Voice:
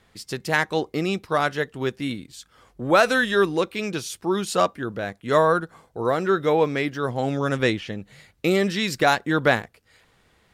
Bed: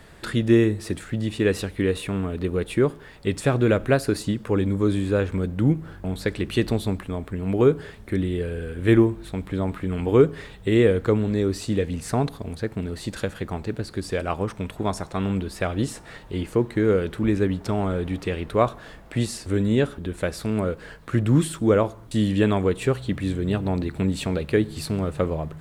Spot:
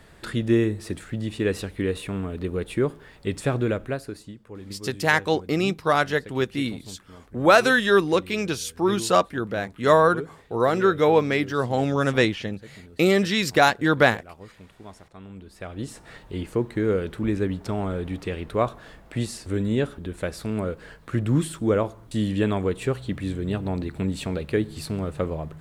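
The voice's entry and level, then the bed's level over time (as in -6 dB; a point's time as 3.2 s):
4.55 s, +1.5 dB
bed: 3.57 s -3 dB
4.42 s -18 dB
15.28 s -18 dB
16.08 s -3 dB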